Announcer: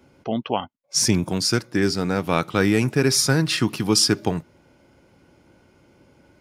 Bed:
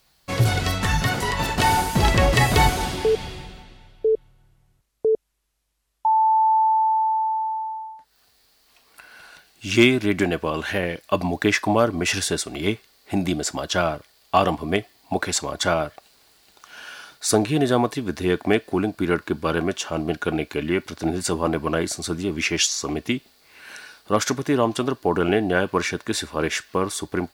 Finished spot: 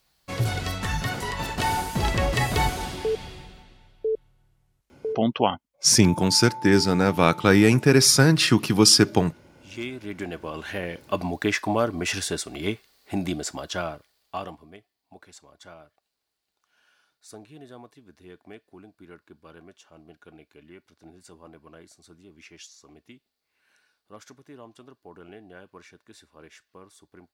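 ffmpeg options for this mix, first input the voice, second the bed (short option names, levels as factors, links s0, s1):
-filter_complex "[0:a]adelay=4900,volume=1.33[s0];[1:a]volume=2.51,afade=t=out:st=4.94:d=0.34:silence=0.237137,afade=t=in:st=9.84:d=1.35:silence=0.199526,afade=t=out:st=13.26:d=1.47:silence=0.0891251[s1];[s0][s1]amix=inputs=2:normalize=0"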